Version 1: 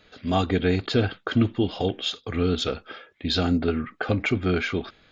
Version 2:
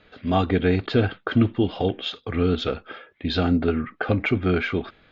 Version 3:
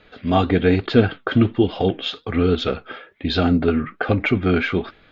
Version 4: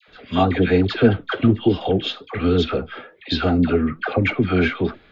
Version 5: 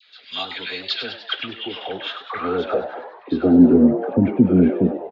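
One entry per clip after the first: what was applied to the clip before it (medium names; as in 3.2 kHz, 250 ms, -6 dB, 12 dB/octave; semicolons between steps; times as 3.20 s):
low-pass 3.1 kHz 12 dB/octave; trim +2 dB
flange 1.2 Hz, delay 1.9 ms, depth 6.5 ms, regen +73%; trim +8 dB
phase dispersion lows, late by 82 ms, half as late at 940 Hz
band-pass sweep 4.3 kHz -> 220 Hz, 1.14–3.83 s; frequency-shifting echo 99 ms, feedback 57%, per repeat +110 Hz, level -11.5 dB; trim +9 dB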